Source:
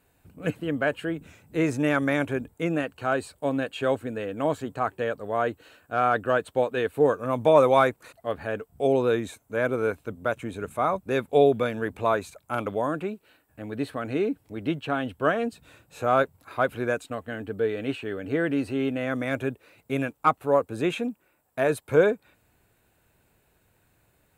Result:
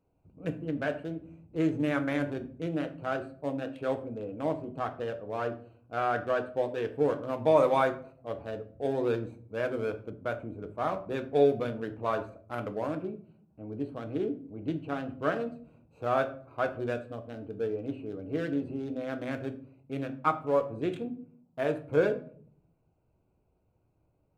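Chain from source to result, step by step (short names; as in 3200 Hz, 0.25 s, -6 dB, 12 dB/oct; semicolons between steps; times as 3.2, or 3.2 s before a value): Wiener smoothing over 25 samples; reverb RT60 0.50 s, pre-delay 6 ms, DRR 6 dB; 10.1–12.16 mismatched tape noise reduction decoder only; gain -6.5 dB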